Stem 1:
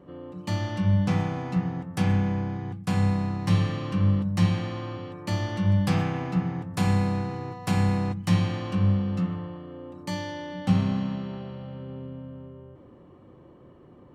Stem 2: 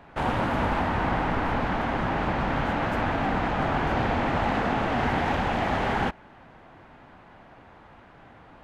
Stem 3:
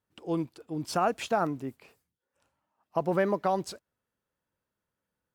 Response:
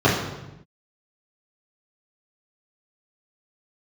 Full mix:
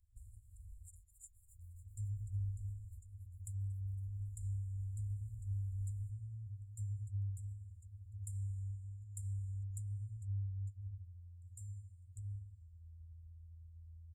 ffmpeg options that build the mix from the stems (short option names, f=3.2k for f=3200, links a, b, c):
-filter_complex "[0:a]acompressor=threshold=-24dB:ratio=6,adelay=1500,volume=1dB[a];[1:a]acompressor=threshold=-30dB:ratio=6,volume=-11.5dB[b];[2:a]crystalizer=i=4.5:c=0,highpass=570,acrossover=split=2100[c][d];[c]aeval=exprs='val(0)*(1-1/2+1/2*cos(2*PI*7.6*n/s))':c=same[e];[d]aeval=exprs='val(0)*(1-1/2-1/2*cos(2*PI*7.6*n/s))':c=same[f];[e][f]amix=inputs=2:normalize=0,volume=-16dB,asplit=3[g][h][i];[h]volume=-19.5dB[j];[i]apad=whole_len=380595[k];[b][k]sidechaincompress=threshold=-58dB:ratio=8:attack=37:release=703[l];[a][g]amix=inputs=2:normalize=0,lowpass=6.3k,acompressor=threshold=-32dB:ratio=6,volume=0dB[m];[j]aecho=0:1:276|552|828|1104|1380|1656|1932|2208|2484:1|0.59|0.348|0.205|0.121|0.0715|0.0422|0.0249|0.0147[n];[l][m][n]amix=inputs=3:normalize=0,equalizer=f=110:t=o:w=0.29:g=-4.5,afftfilt=real='re*(1-between(b*sr/4096,110,7000))':imag='im*(1-between(b*sr/4096,110,7000))':win_size=4096:overlap=0.75,highshelf=f=6.7k:g=6"